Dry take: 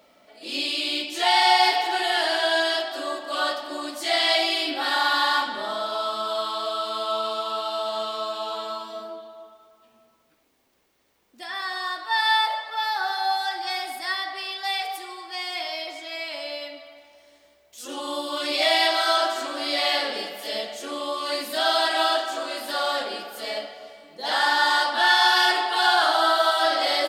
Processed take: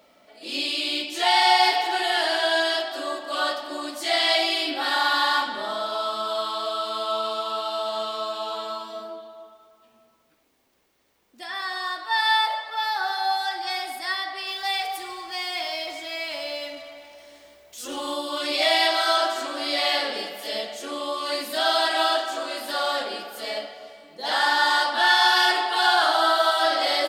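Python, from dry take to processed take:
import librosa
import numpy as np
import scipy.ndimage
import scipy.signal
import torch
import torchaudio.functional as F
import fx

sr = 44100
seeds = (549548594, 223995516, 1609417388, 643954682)

y = fx.law_mismatch(x, sr, coded='mu', at=(14.47, 18.14))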